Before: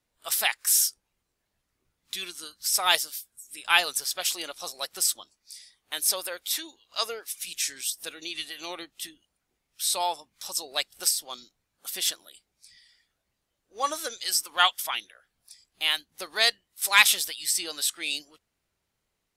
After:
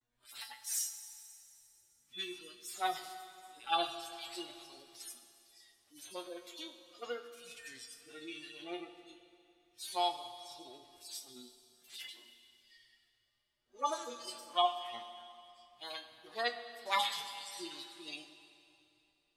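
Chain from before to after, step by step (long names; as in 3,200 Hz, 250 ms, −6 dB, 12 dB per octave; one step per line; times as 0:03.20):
harmonic-percussive split with one part muted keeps harmonic
high-shelf EQ 6,200 Hz −10.5 dB
notch filter 500 Hz, Q 12
tuned comb filter 120 Hz, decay 0.19 s, harmonics all, mix 90%
pitch vibrato 0.45 Hz 54 cents
four-comb reverb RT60 2.7 s, combs from 26 ms, DRR 9 dB
level +5.5 dB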